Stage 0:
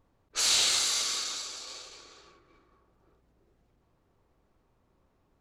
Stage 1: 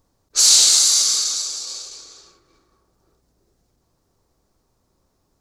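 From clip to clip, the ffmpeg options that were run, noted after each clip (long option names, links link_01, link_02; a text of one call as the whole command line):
ffmpeg -i in.wav -af "highshelf=frequency=3800:width_type=q:width=1.5:gain=10.5,volume=2.5dB" out.wav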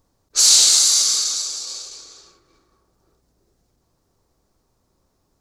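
ffmpeg -i in.wav -af anull out.wav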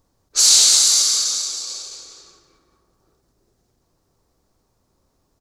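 ffmpeg -i in.wav -af "aecho=1:1:175:0.335" out.wav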